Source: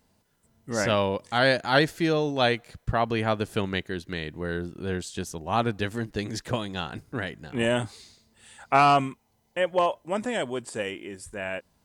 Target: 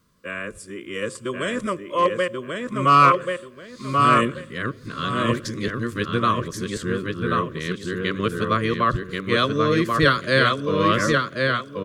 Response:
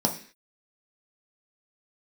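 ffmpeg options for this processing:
-filter_complex "[0:a]areverse,asuperstop=centerf=820:order=4:qfactor=1.4,equalizer=frequency=1100:width_type=o:width=0.53:gain=14.5,asplit=2[link_01][link_02];[link_02]adelay=1085,lowpass=frequency=4400:poles=1,volume=-3dB,asplit=2[link_03][link_04];[link_04]adelay=1085,lowpass=frequency=4400:poles=1,volume=0.27,asplit=2[link_05][link_06];[link_06]adelay=1085,lowpass=frequency=4400:poles=1,volume=0.27,asplit=2[link_07][link_08];[link_08]adelay=1085,lowpass=frequency=4400:poles=1,volume=0.27[link_09];[link_01][link_03][link_05][link_07][link_09]amix=inputs=5:normalize=0,asplit=2[link_10][link_11];[1:a]atrim=start_sample=2205,asetrate=26460,aresample=44100[link_12];[link_11][link_12]afir=irnorm=-1:irlink=0,volume=-29dB[link_13];[link_10][link_13]amix=inputs=2:normalize=0,volume=1.5dB"

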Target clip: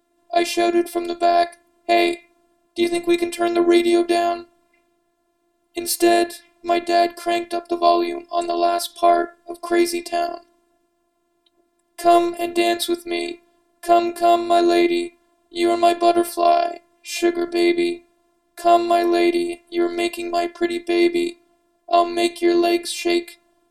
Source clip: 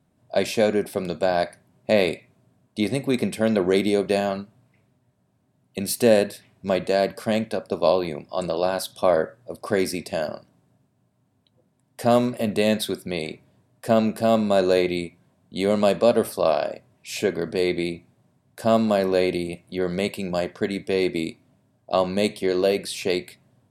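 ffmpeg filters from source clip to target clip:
ffmpeg -i in.wav -af "highpass=190,afftfilt=real='hypot(re,im)*cos(PI*b)':imag='0':win_size=512:overlap=0.75,volume=8dB" out.wav

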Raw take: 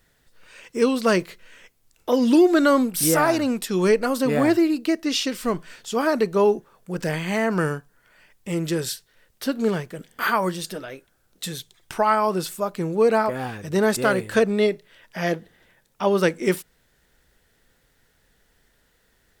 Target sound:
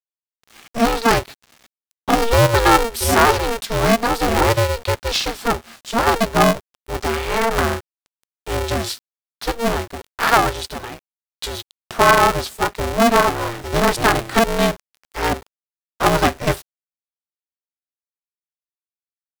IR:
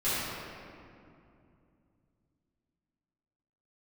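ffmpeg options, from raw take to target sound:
-af "equalizer=frequency=125:width_type=o:width=1:gain=11,equalizer=frequency=500:width_type=o:width=1:gain=3,equalizer=frequency=1000:width_type=o:width=1:gain=12,equalizer=frequency=4000:width_type=o:width=1:gain=8,aeval=exprs='val(0)*gte(abs(val(0)),0.0141)':channel_layout=same,aeval=exprs='val(0)*sgn(sin(2*PI*230*n/s))':channel_layout=same,volume=-2.5dB"

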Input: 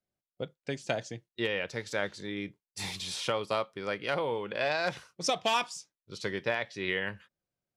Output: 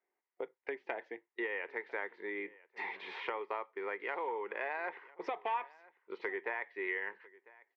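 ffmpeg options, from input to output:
ffmpeg -i in.wav -filter_complex "[0:a]highpass=frequency=370:width=0.5412,highpass=frequency=370:width=1.3066,equalizer=frequency=390:width_type=q:width=4:gain=6,equalizer=frequency=590:width_type=q:width=4:gain=-9,equalizer=frequency=920:width_type=q:width=4:gain=8,equalizer=frequency=1400:width_type=q:width=4:gain=-4,equalizer=frequency=2000:width_type=q:width=4:gain=9,lowpass=frequency=2100:width=0.5412,lowpass=frequency=2100:width=1.3066,acompressor=threshold=-48dB:ratio=2.5,asplit=2[link_01][link_02];[link_02]aecho=0:1:999:0.0794[link_03];[link_01][link_03]amix=inputs=2:normalize=0,volume=6.5dB" out.wav

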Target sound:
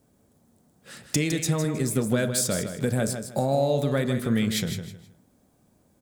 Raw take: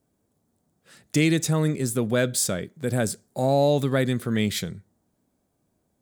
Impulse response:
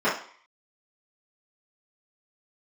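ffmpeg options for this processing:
-filter_complex "[0:a]acompressor=threshold=-32dB:ratio=4,aecho=1:1:158|316|474:0.376|0.101|0.0274,asplit=2[link_01][link_02];[1:a]atrim=start_sample=2205[link_03];[link_02][link_03]afir=irnorm=-1:irlink=0,volume=-27dB[link_04];[link_01][link_04]amix=inputs=2:normalize=0,volume=8dB"

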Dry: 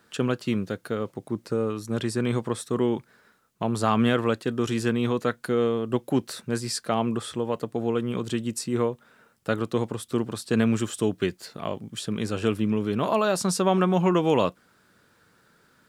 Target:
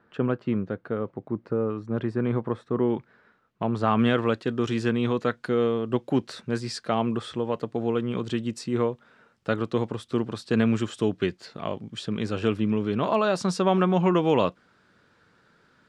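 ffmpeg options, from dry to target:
ffmpeg -i in.wav -af "asetnsamples=nb_out_samples=441:pad=0,asendcmd='2.9 lowpass f 2700;3.99 lowpass f 4800',lowpass=1600" out.wav

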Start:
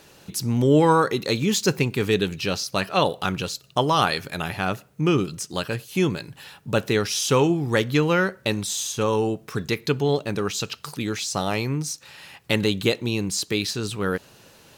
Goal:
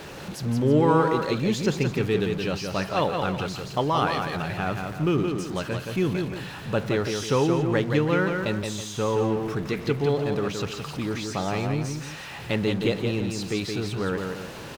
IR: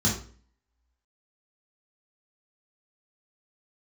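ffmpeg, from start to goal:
-filter_complex "[0:a]aeval=exprs='val(0)+0.5*0.0398*sgn(val(0))':channel_layout=same,lowpass=frequency=2100:poles=1,asplit=2[link_01][link_02];[link_02]aecho=0:1:172|323:0.562|0.224[link_03];[link_01][link_03]amix=inputs=2:normalize=0,volume=-4dB"

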